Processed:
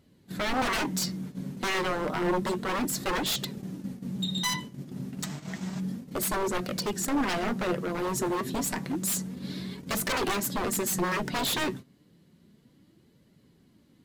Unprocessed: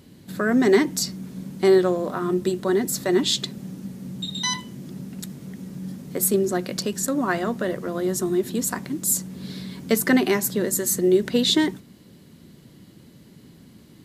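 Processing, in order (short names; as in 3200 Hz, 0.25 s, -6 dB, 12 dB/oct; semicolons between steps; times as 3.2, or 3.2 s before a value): spectral gain 5.23–5.8, 590–8400 Hz +12 dB; gate -36 dBFS, range -11 dB; high shelf 4600 Hz -5 dB; wavefolder -23 dBFS; flange 0.3 Hz, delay 1.4 ms, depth 6.8 ms, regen +60%; gain +4 dB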